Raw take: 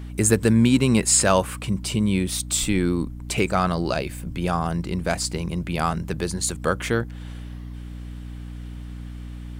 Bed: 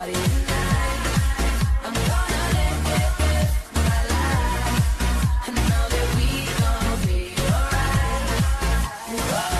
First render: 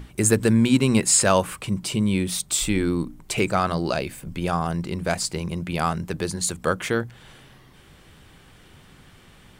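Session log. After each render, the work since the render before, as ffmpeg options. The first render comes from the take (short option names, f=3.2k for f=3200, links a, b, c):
-af "bandreject=f=60:t=h:w=6,bandreject=f=120:t=h:w=6,bandreject=f=180:t=h:w=6,bandreject=f=240:t=h:w=6,bandreject=f=300:t=h:w=6"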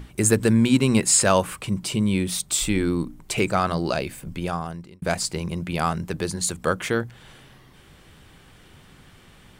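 -filter_complex "[0:a]asplit=2[a][b];[a]atrim=end=5.02,asetpts=PTS-STARTPTS,afade=t=out:st=4.29:d=0.73[c];[b]atrim=start=5.02,asetpts=PTS-STARTPTS,afade=t=in:d=0.004:c=hsin[d];[c][d]concat=n=2:v=0:a=1"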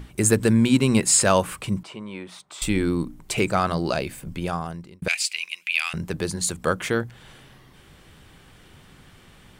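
-filter_complex "[0:a]asettb=1/sr,asplit=3[a][b][c];[a]atrim=end=1.834[d];[b]atrim=start=1.83:end=2.62,asetpts=PTS-STARTPTS,afade=t=in:d=0.004:c=qsin,afade=t=out:st=0.786:d=0.004:c=qsin,bandpass=f=1k:t=q:w=1.2[e];[c]atrim=start=2.616[f];[d][e]acrossfade=d=0.004:c1=hsin:c2=qsin[g];[g][f]acrossfade=d=0.004:c1=qsin:c2=hsin,asettb=1/sr,asplit=3[h][i][j];[h]atrim=end=5.084[k];[i]atrim=start=5.08:end=5.94,asetpts=PTS-STARTPTS,afade=t=in:d=0.004:c=qsin,afade=t=out:st=0.856:d=0.004:c=qsin,highpass=f=2.5k:t=q:w=6.4[l];[j]atrim=start=5.936[m];[k][l]acrossfade=d=0.004:c1=hsin:c2=qsin[n];[n][m]acrossfade=d=0.004:c1=qsin:c2=hsin"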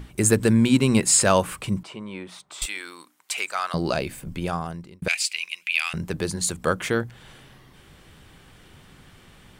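-filter_complex "[0:a]asettb=1/sr,asplit=3[a][b][c];[a]atrim=end=2.664[d];[b]atrim=start=2.66:end=3.74,asetpts=PTS-STARTPTS,afade=t=in:d=0.004:c=qsin,afade=t=out:st=1.076:d=0.004:c=qsin,highpass=1.2k[e];[c]atrim=start=3.736[f];[d][e]acrossfade=d=0.004:c1=hsin:c2=qsin[g];[g][f]acrossfade=d=0.004:c1=qsin:c2=hsin"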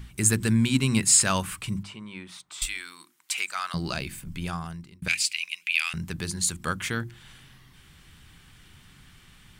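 -af "equalizer=f=530:t=o:w=1.6:g=-14,bandreject=f=50:t=h:w=6,bandreject=f=100:t=h:w=6,bandreject=f=150:t=h:w=6,bandreject=f=200:t=h:w=6,bandreject=f=250:t=h:w=6,bandreject=f=300:t=h:w=6,bandreject=f=350:t=h:w=6"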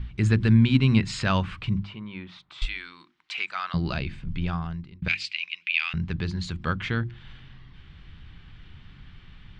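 -af "lowpass=f=4k:w=0.5412,lowpass=f=4k:w=1.3066,lowshelf=f=130:g=11"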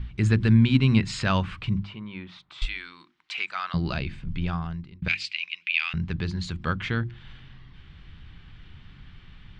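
-af anull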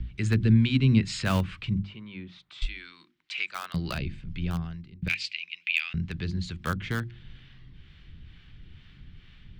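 -filter_complex "[0:a]acrossover=split=590[a][b];[a]aeval=exprs='val(0)*(1-0.5/2+0.5/2*cos(2*PI*2.2*n/s))':c=same[c];[b]aeval=exprs='val(0)*(1-0.5/2-0.5/2*cos(2*PI*2.2*n/s))':c=same[d];[c][d]amix=inputs=2:normalize=0,acrossover=split=240|700|1300[e][f][g][h];[g]acrusher=bits=5:mix=0:aa=0.000001[i];[e][f][i][h]amix=inputs=4:normalize=0"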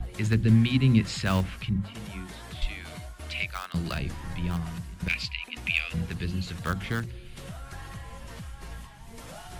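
-filter_complex "[1:a]volume=-20.5dB[a];[0:a][a]amix=inputs=2:normalize=0"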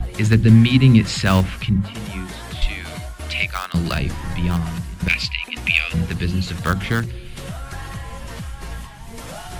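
-af "volume=9.5dB,alimiter=limit=-2dB:level=0:latency=1"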